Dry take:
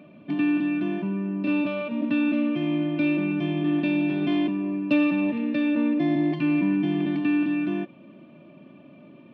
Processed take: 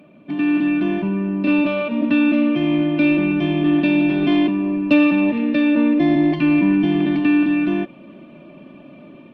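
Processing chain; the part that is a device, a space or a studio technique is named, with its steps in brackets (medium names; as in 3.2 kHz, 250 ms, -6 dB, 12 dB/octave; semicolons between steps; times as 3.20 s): video call (high-pass 140 Hz 6 dB/octave; level rider gain up to 6 dB; trim +2 dB; Opus 32 kbps 48 kHz)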